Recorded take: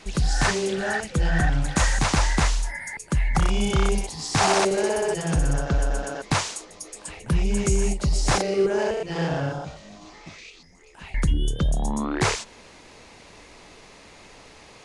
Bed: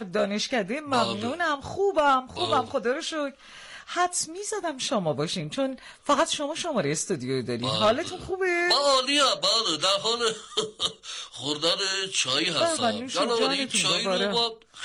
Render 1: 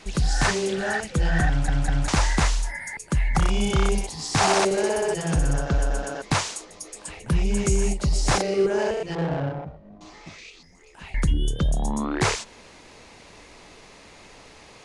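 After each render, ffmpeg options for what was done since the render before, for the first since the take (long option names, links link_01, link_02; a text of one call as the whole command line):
ffmpeg -i in.wav -filter_complex "[0:a]asettb=1/sr,asplit=3[link_01][link_02][link_03];[link_01]atrim=end=9.154[link_04];[link_02]atrim=start=9.15:end=10.01,asetpts=PTS-STARTPTS,afade=type=in:duration=0.004:curve=qsin,afade=type=out:start_time=0.856:duration=0.004:curve=qsin,adynamicsmooth=sensitivity=1.5:basefreq=570[link_05];[link_03]atrim=start=10.006[link_06];[link_04][link_05]acrossfade=duration=0.004:curve1=hsin:curve2=qsin[link_07];[link_07][link_06]acrossfade=duration=0.004:curve1=qsin:curve2=hsin,asplit=4[link_08][link_09][link_10][link_11];[link_08]atrim=end=1.682[link_12];[link_09]atrim=start=1.478:end=1.682[link_13];[link_10]atrim=start=1.478:end=1.682[link_14];[link_11]atrim=start=2.078[link_15];[link_12][link_13]acrossfade=duration=0.004:curve1=hsin:curve2=hsin[link_16];[link_16][link_14]acrossfade=duration=0.004:curve1=hsin:curve2=hsin[link_17];[link_17][link_15]acrossfade=duration=0.004:curve1=hsin:curve2=hsin" out.wav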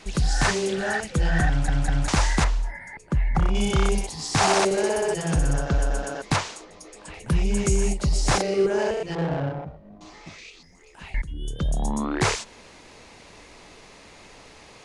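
ffmpeg -i in.wav -filter_complex "[0:a]asettb=1/sr,asplit=3[link_01][link_02][link_03];[link_01]atrim=end=2.444[link_04];[link_02]atrim=start=2.44:end=3.55,asetpts=PTS-STARTPTS,afade=type=in:duration=0.004:curve=qsin,afade=type=out:start_time=1.106:duration=0.004:curve=qsin,lowpass=frequency=1200:poles=1[link_05];[link_03]atrim=start=3.546[link_06];[link_04][link_05]acrossfade=duration=0.004:curve1=hsin:curve2=qsin[link_07];[link_07][link_06]acrossfade=duration=0.004:curve1=qsin:curve2=hsin,asettb=1/sr,asplit=3[link_08][link_09][link_10];[link_08]atrim=end=6.364[link_11];[link_09]atrim=start=6.36:end=7.14,asetpts=PTS-STARTPTS,afade=type=in:duration=0.004:curve=qsin,afade=type=out:start_time=0.776:duration=0.004:curve=qsin,aemphasis=mode=reproduction:type=50fm[link_12];[link_10]atrim=start=7.136[link_13];[link_11][link_12]acrossfade=duration=0.004:curve1=hsin:curve2=qsin[link_14];[link_14][link_13]acrossfade=duration=0.004:curve1=qsin:curve2=hsin,asplit=2[link_15][link_16];[link_15]atrim=end=11.22,asetpts=PTS-STARTPTS,afade=type=out:start_time=11.216:duration=0.004:curve=hsin:silence=0.0749894[link_17];[link_16]atrim=start=11.22,asetpts=PTS-STARTPTS,afade=type=in:duration=0.61:silence=0.0749894[link_18];[link_17][link_18]concat=n=2:v=0:a=1" out.wav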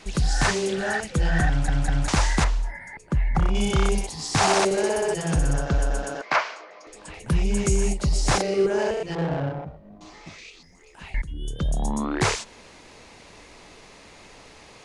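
ffmpeg -i in.wav -filter_complex "[0:a]asettb=1/sr,asplit=3[link_01][link_02][link_03];[link_01]atrim=end=6.214[link_04];[link_02]atrim=start=6.21:end=6.87,asetpts=PTS-STARTPTS,afade=type=in:duration=0.004:curve=qsin,afade=type=out:start_time=0.656:duration=0.004:curve=qsin,highpass=490,equalizer=frequency=630:width_type=q:width=4:gain=8,equalizer=frequency=1100:width_type=q:width=4:gain=5,equalizer=frequency=1500:width_type=q:width=4:gain=7,equalizer=frequency=2200:width_type=q:width=4:gain=6,equalizer=frequency=3700:width_type=q:width=4:gain=-6,lowpass=frequency=5000:width=0.5412,lowpass=frequency=5000:width=1.3066[link_05];[link_03]atrim=start=6.866[link_06];[link_04][link_05]acrossfade=duration=0.004:curve1=hsin:curve2=qsin[link_07];[link_07][link_06]acrossfade=duration=0.004:curve1=qsin:curve2=hsin" out.wav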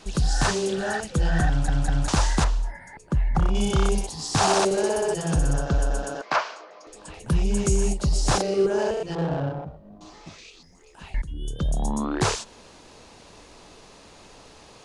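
ffmpeg -i in.wav -af "equalizer=frequency=2100:width=2.8:gain=-8" out.wav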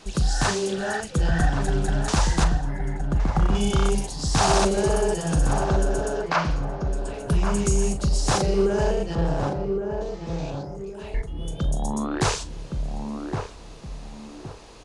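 ffmpeg -i in.wav -filter_complex "[0:a]asplit=2[link_01][link_02];[link_02]adelay=40,volume=-13dB[link_03];[link_01][link_03]amix=inputs=2:normalize=0,asplit=2[link_04][link_05];[link_05]adelay=1116,lowpass=frequency=840:poles=1,volume=-4dB,asplit=2[link_06][link_07];[link_07]adelay=1116,lowpass=frequency=840:poles=1,volume=0.37,asplit=2[link_08][link_09];[link_09]adelay=1116,lowpass=frequency=840:poles=1,volume=0.37,asplit=2[link_10][link_11];[link_11]adelay=1116,lowpass=frequency=840:poles=1,volume=0.37,asplit=2[link_12][link_13];[link_13]adelay=1116,lowpass=frequency=840:poles=1,volume=0.37[link_14];[link_04][link_06][link_08][link_10][link_12][link_14]amix=inputs=6:normalize=0" out.wav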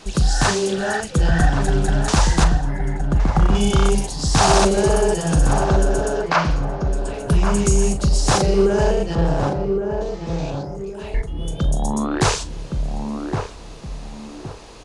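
ffmpeg -i in.wav -af "volume=5dB" out.wav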